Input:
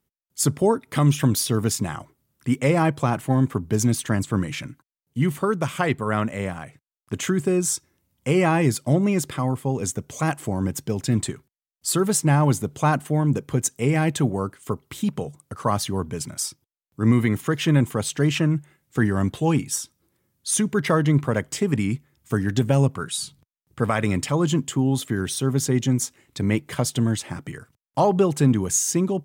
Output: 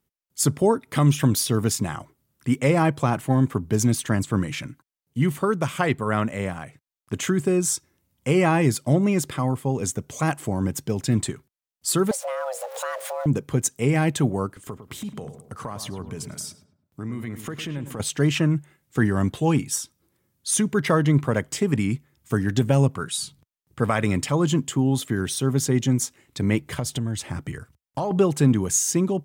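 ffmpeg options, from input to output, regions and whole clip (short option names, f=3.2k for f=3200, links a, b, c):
-filter_complex "[0:a]asettb=1/sr,asplit=3[a][b][c];[a]atrim=end=12.114[d];[b]atrim=start=12.11:end=13.26,asetpts=PTS-STARTPTS,afade=t=in:d=0.004:c=qsin,afade=t=out:st=1.146:d=0.004:c=qsin,aeval=exprs='val(0)+0.5*0.0282*sgn(val(0))':c=same,acompressor=threshold=-30dB:ratio=3:attack=3.2:release=140:knee=1:detection=peak,afreqshift=390[e];[c]atrim=start=13.256[f];[d][e]acrossfade=d=0.004:c1=hsin:c2=qsin[g];[g][f]acrossfade=d=0.004:c1=qsin:c2=hsin,asettb=1/sr,asplit=3[h][i][j];[h]atrim=end=14.464[k];[i]atrim=start=14.46:end=18,asetpts=PTS-STARTPTS,afade=t=in:d=0.004:c=qsin,afade=t=out:st=3.536:d=0.004:c=qsin,acompressor=threshold=-30dB:ratio=4:attack=3.2:release=140:knee=1:detection=peak,asplit=2[l][m];[m]adelay=105,lowpass=f=1.5k:p=1,volume=-9dB,asplit=2[n][o];[o]adelay=105,lowpass=f=1.5k:p=1,volume=0.46,asplit=2[p][q];[q]adelay=105,lowpass=f=1.5k:p=1,volume=0.46,asplit=2[r][s];[s]adelay=105,lowpass=f=1.5k:p=1,volume=0.46,asplit=2[t][u];[u]adelay=105,lowpass=f=1.5k:p=1,volume=0.46[v];[l][n][p][r][t][v]amix=inputs=6:normalize=0,atrim=end_sample=156114[w];[j]atrim=start=17.996[x];[k][w]acrossfade=d=0.004:c1=hsin:c2=qsin[y];[y][x]acrossfade=d=0.004:c1=qsin:c2=hsin,asettb=1/sr,asplit=3[z][aa][ab];[z]atrim=end=26.604[ac];[aa]atrim=start=26.6:end=28.11,asetpts=PTS-STARTPTS,afade=t=in:d=0.004:c=qsin,afade=t=out:st=1.506:d=0.004:c=qsin,equalizer=f=68:t=o:w=1.2:g=10.5,acompressor=threshold=-23dB:ratio=4:attack=3.2:release=140:knee=1:detection=peak[ad];[ab]atrim=start=28.106[ae];[ac][ad]acrossfade=d=0.004:c1=hsin:c2=qsin[af];[af][ae]acrossfade=d=0.004:c1=qsin:c2=hsin"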